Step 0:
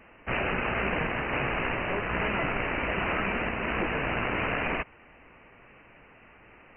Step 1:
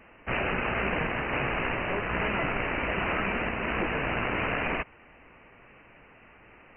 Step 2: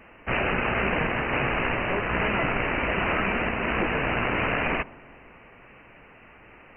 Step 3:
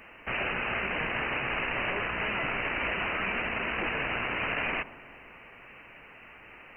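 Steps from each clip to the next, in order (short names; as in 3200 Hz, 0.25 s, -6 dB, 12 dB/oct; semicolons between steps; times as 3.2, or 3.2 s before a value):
nothing audible
dark delay 0.125 s, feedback 68%, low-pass 1100 Hz, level -21.5 dB; gain +3.5 dB
high shelf 2200 Hz +9.5 dB; limiter -19 dBFS, peak gain reduction 10.5 dB; low shelf 360 Hz -3.5 dB; gain -2 dB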